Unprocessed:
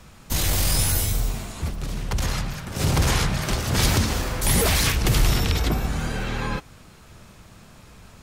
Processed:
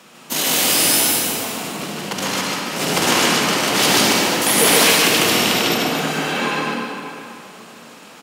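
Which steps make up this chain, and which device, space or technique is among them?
stadium PA (HPF 220 Hz 24 dB/oct; bell 2900 Hz +4.5 dB 0.35 oct; loudspeakers at several distances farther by 51 m -1 dB, 97 m -12 dB; reverb RT60 3.0 s, pre-delay 30 ms, DRR 1 dB); gain +4.5 dB

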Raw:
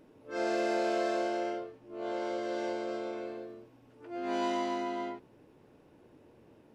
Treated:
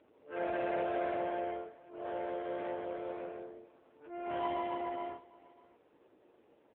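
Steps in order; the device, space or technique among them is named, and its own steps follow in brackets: 3.04–3.5 dynamic EQ 1200 Hz, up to +3 dB, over -57 dBFS, Q 1.6; satellite phone (BPF 390–3200 Hz; echo 0.607 s -22.5 dB; AMR-NB 5.9 kbps 8000 Hz)

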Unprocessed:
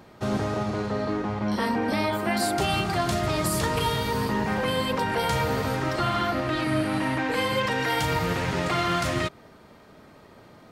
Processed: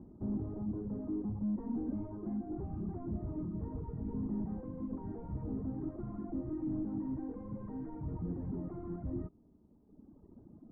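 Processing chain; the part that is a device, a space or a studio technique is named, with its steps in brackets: reverb removal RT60 1.8 s; overdriven synthesiser ladder filter (soft clip -33 dBFS, distortion -7 dB; ladder low-pass 340 Hz, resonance 40%); graphic EQ 125/250/500/1000/2000 Hz -10/-5/-9/+7/+7 dB; gain +14.5 dB

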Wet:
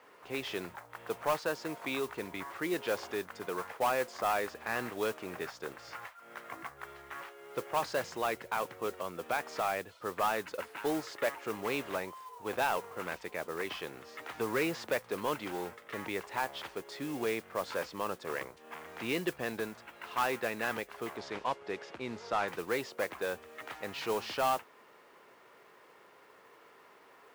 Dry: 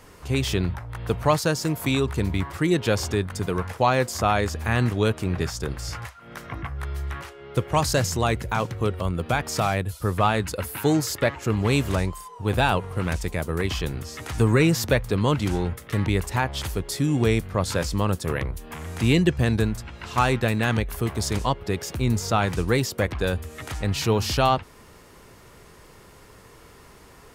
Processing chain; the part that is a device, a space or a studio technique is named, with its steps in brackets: carbon microphone (BPF 440–2800 Hz; soft clip -16.5 dBFS, distortion -14 dB; modulation noise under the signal 16 dB); 21.17–22.48 LPF 5300 Hz 12 dB/oct; gain -5.5 dB

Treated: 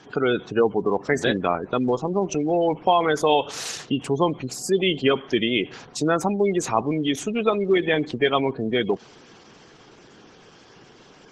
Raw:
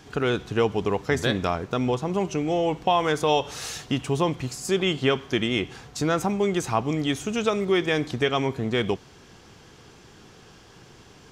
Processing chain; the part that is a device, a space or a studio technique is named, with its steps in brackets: noise-suppressed video call (HPF 180 Hz 12 dB/oct; spectral gate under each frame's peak -20 dB strong; gain +3.5 dB; Opus 16 kbps 48000 Hz)

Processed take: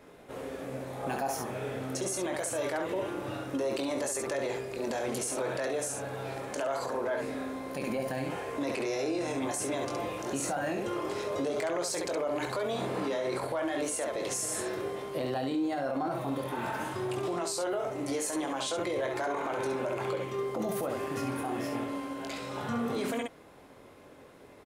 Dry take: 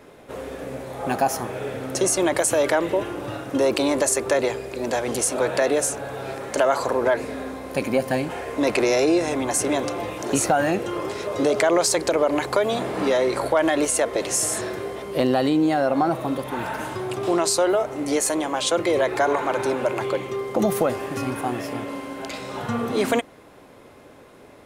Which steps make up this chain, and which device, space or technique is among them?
early reflections 22 ms -6.5 dB, 68 ms -6 dB; clipper into limiter (hard clip -8.5 dBFS, distortion -36 dB; limiter -16.5 dBFS, peak gain reduction 8 dB); gain -7.5 dB

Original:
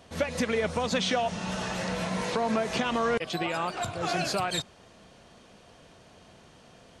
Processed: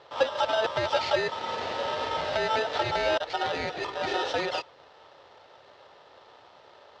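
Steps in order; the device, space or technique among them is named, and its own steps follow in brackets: ring modulator pedal into a guitar cabinet (polarity switched at an audio rate 1100 Hz; speaker cabinet 86–4400 Hz, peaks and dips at 94 Hz +3 dB, 200 Hz -10 dB, 540 Hz +9 dB, 780 Hz +6 dB, 1600 Hz -5 dB, 2300 Hz -5 dB)

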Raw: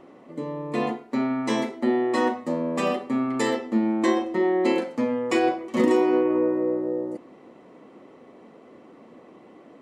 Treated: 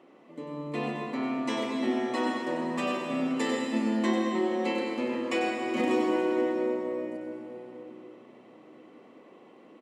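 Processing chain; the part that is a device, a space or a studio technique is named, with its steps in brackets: PA in a hall (HPF 170 Hz 12 dB/oct; bell 2800 Hz +5.5 dB 0.81 oct; echo 96 ms -7.5 dB; reverb RT60 3.4 s, pre-delay 0.106 s, DRR 2 dB); gain -7.5 dB

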